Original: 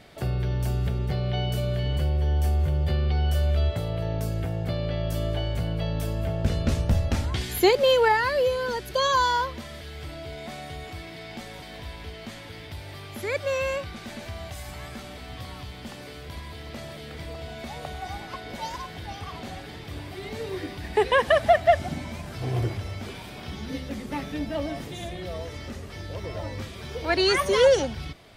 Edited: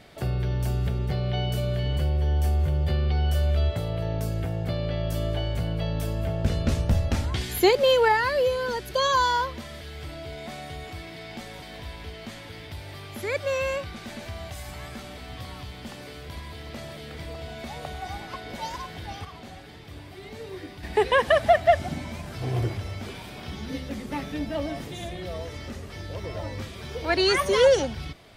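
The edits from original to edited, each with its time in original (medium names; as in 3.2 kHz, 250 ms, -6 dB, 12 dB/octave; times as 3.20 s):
19.25–20.83 s: gain -5.5 dB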